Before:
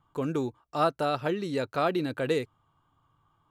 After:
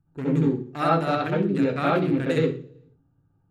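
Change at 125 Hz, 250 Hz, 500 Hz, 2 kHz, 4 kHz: +10.5, +8.5, +4.0, +5.0, +1.0 dB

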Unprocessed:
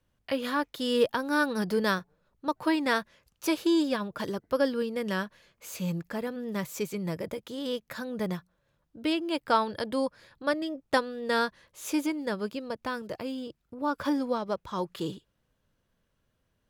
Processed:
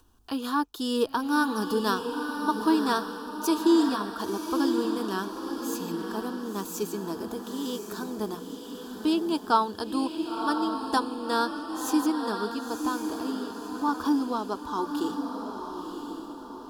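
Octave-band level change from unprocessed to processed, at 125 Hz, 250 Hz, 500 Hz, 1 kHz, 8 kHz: -5.0, +4.0, -1.0, +4.5, +4.5 dB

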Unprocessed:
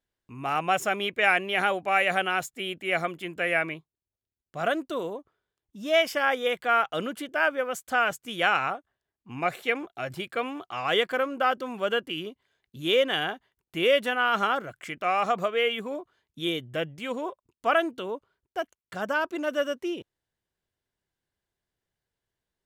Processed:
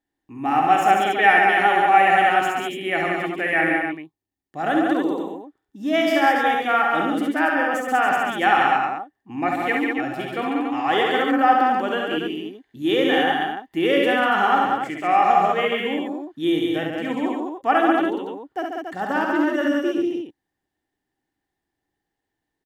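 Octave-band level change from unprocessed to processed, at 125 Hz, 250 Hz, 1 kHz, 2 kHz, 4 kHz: +4.0, +12.5, +10.5, +5.5, +1.5 dB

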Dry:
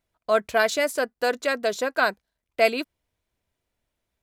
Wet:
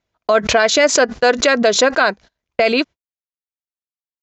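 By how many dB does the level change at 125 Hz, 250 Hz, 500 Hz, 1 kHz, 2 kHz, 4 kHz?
n/a, +12.5 dB, +8.5 dB, +8.0 dB, +8.5 dB, +13.0 dB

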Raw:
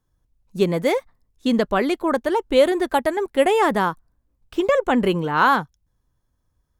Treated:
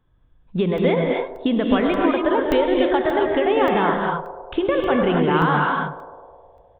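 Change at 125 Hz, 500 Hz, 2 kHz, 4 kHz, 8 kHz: +4.5 dB, +1.0 dB, 0.0 dB, -0.5 dB, under -15 dB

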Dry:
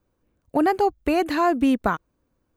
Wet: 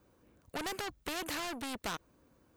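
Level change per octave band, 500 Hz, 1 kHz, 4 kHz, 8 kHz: -20.0, -18.5, -2.5, +2.5 dB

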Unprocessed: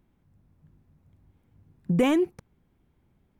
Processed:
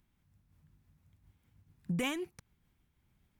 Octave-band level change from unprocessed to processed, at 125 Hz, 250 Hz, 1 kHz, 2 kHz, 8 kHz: -9.5, -13.0, -11.0, -4.5, -1.5 dB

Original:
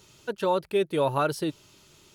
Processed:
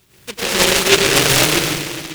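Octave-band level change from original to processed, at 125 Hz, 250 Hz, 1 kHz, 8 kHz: +11.5, +10.0, +7.0, +30.0 dB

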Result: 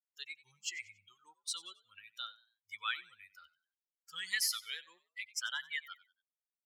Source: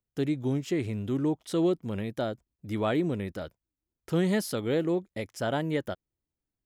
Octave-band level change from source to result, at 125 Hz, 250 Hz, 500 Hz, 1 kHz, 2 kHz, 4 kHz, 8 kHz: under -40 dB, under -40 dB, under -40 dB, -11.0 dB, 0.0 dB, +3.0 dB, +4.5 dB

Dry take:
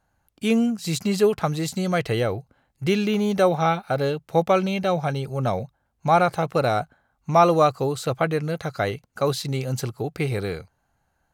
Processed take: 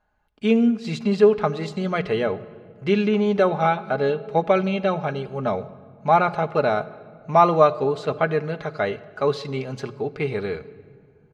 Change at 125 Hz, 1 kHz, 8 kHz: -3.0 dB, +1.0 dB, under -10 dB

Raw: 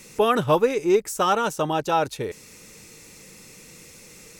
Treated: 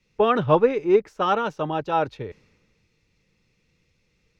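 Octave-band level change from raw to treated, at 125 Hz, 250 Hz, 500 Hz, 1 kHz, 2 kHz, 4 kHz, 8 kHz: +1.0 dB, 0.0 dB, +0.5 dB, -0.5 dB, -2.0 dB, -5.0 dB, under -20 dB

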